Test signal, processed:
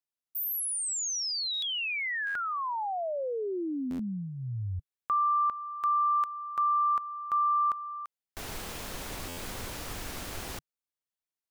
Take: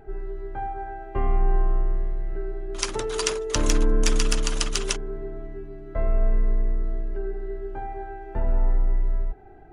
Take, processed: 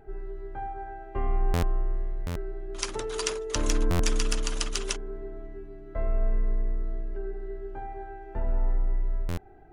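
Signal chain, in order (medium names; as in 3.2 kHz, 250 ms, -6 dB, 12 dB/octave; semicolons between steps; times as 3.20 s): dynamic bell 150 Hz, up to -7 dB, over -51 dBFS, Q 4.2; buffer glitch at 1.53/2.26/3.90/9.28 s, samples 512, times 7; trim -4.5 dB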